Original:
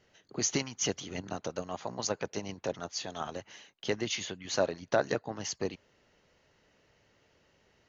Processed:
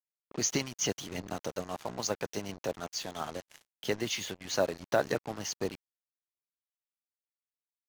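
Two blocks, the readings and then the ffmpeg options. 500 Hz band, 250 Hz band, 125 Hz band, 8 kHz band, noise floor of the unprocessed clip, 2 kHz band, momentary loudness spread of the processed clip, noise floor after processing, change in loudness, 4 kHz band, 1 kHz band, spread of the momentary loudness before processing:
0.0 dB, 0.0 dB, 0.0 dB, can't be measured, −69 dBFS, 0.0 dB, 9 LU, below −85 dBFS, 0.0 dB, 0.0 dB, 0.0 dB, 10 LU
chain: -af "acrusher=bits=6:mix=0:aa=0.5"

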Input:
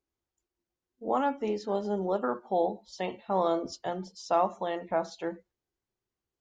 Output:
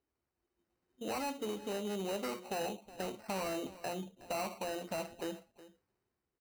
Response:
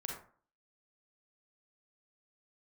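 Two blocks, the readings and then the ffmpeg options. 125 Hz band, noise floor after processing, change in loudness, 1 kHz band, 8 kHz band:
−5.5 dB, below −85 dBFS, −8.5 dB, −11.0 dB, can't be measured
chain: -filter_complex "[0:a]dynaudnorm=framelen=100:gausssize=13:maxgain=7.5dB,aresample=8000,asoftclip=type=tanh:threshold=-21dB,aresample=44100,acrusher=bits=8:mode=log:mix=0:aa=0.000001,highpass=58,flanger=delay=4.3:depth=1.8:regen=-84:speed=0.34:shape=triangular,acompressor=threshold=-55dB:ratio=2,acrusher=samples=13:mix=1:aa=0.000001,asplit=2[link_01][link_02];[link_02]aecho=0:1:367:0.133[link_03];[link_01][link_03]amix=inputs=2:normalize=0,volume=7dB"

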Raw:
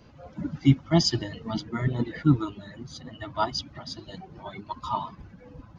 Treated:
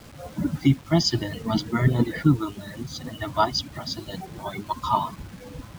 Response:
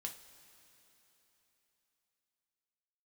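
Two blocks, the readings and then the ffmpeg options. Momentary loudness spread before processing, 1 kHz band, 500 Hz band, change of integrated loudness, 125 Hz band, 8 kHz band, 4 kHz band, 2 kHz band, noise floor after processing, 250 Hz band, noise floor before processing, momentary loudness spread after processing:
19 LU, +5.5 dB, +4.0 dB, +1.5 dB, +2.5 dB, can't be measured, +3.0 dB, +5.0 dB, −44 dBFS, +2.5 dB, −51 dBFS, 14 LU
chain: -af "bandreject=frequency=2700:width=21,alimiter=limit=-15dB:level=0:latency=1:release=476,acrusher=bits=8:mix=0:aa=0.000001,volume=6.5dB"

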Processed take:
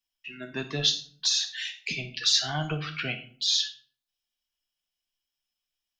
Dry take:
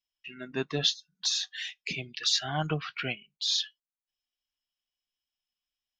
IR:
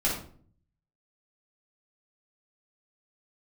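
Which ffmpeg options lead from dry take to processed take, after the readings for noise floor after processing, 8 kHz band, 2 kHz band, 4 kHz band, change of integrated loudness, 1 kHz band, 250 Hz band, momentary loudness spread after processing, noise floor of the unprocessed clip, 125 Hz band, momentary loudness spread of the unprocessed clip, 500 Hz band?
below −85 dBFS, +4.0 dB, +2.5 dB, +3.5 dB, +3.0 dB, −0.5 dB, 0.0 dB, 12 LU, below −85 dBFS, +1.5 dB, 10 LU, −1.5 dB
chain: -filter_complex "[0:a]acrossover=split=130|3000[link_01][link_02][link_03];[link_02]acompressor=threshold=-30dB:ratio=6[link_04];[link_01][link_04][link_03]amix=inputs=3:normalize=0,asplit=2[link_05][link_06];[1:a]atrim=start_sample=2205,highshelf=frequency=2500:gain=11[link_07];[link_06][link_07]afir=irnorm=-1:irlink=0,volume=-17dB[link_08];[link_05][link_08]amix=inputs=2:normalize=0"

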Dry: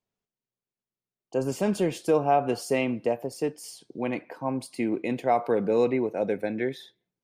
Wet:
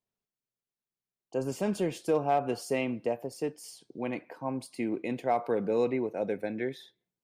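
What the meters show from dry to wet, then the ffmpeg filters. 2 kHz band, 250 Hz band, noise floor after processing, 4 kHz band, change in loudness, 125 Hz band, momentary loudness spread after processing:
−4.5 dB, −4.5 dB, below −85 dBFS, −4.5 dB, −4.5 dB, −4.5 dB, 9 LU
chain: -af "asoftclip=type=hard:threshold=-13dB,volume=-4.5dB"

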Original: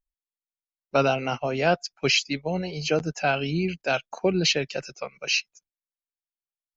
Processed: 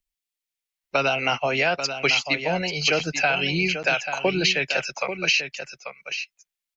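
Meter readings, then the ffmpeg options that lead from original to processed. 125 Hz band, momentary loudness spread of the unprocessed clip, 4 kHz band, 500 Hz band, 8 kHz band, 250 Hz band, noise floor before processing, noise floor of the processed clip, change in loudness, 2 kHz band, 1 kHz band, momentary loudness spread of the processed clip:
−2.0 dB, 7 LU, +3.5 dB, 0.0 dB, can't be measured, −1.5 dB, below −85 dBFS, below −85 dBFS, +2.5 dB, +6.5 dB, +2.0 dB, 10 LU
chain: -filter_complex "[0:a]highshelf=frequency=1700:width_type=q:width=1.5:gain=7.5,acrossover=split=230|690|1900[link_01][link_02][link_03][link_04];[link_03]dynaudnorm=framelen=130:gausssize=13:maxgain=11.5dB[link_05];[link_01][link_02][link_05][link_04]amix=inputs=4:normalize=0,alimiter=limit=-6.5dB:level=0:latency=1:release=169,acompressor=threshold=-19dB:ratio=2.5,aecho=1:1:839:0.355"

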